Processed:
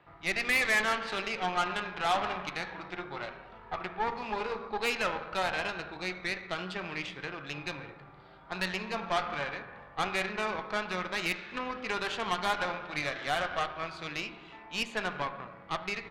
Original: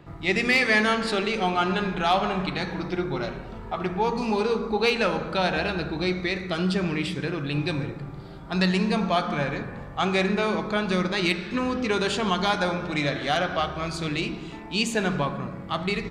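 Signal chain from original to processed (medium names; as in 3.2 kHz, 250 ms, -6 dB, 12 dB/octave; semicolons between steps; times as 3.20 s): three-band isolator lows -15 dB, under 580 Hz, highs -22 dB, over 3.8 kHz; Chebyshev shaper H 8 -19 dB, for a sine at -10.5 dBFS; trim -4.5 dB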